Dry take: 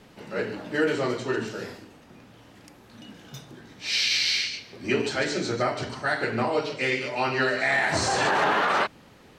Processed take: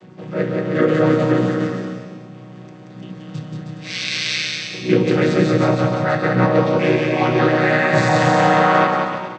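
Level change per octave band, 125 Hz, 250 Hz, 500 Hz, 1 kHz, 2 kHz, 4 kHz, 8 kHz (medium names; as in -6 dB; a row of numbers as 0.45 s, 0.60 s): +16.5 dB, +14.0 dB, +10.5 dB, +8.5 dB, +4.5 dB, +1.0 dB, 0.0 dB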